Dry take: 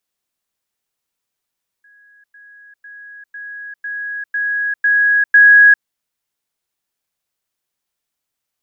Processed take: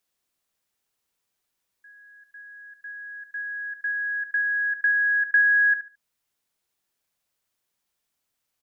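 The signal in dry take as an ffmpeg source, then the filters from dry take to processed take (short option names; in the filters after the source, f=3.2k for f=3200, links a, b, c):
-f lavfi -i "aevalsrc='pow(10,(-46+6*floor(t/0.5))/20)*sin(2*PI*1660*t)*clip(min(mod(t,0.5),0.4-mod(t,0.5))/0.005,0,1)':d=4:s=44100"
-filter_complex "[0:a]acompressor=threshold=-25dB:ratio=2,asplit=2[a][b];[b]adelay=72,lowpass=f=1.6k:p=1,volume=-9dB,asplit=2[c][d];[d]adelay=72,lowpass=f=1.6k:p=1,volume=0.29,asplit=2[e][f];[f]adelay=72,lowpass=f=1.6k:p=1,volume=0.29[g];[a][c][e][g]amix=inputs=4:normalize=0"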